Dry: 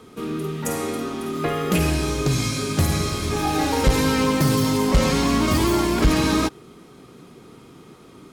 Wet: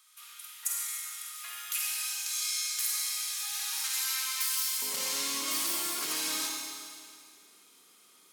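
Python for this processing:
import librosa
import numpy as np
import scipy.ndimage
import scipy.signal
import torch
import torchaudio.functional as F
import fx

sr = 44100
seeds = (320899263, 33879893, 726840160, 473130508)

y = fx.highpass(x, sr, hz=fx.steps((0.0, 1100.0), (4.82, 160.0)), slope=24)
y = np.diff(y, prepend=0.0)
y = fx.rev_schroeder(y, sr, rt60_s=2.2, comb_ms=32, drr_db=0.0)
y = y * librosa.db_to_amplitude(-2.5)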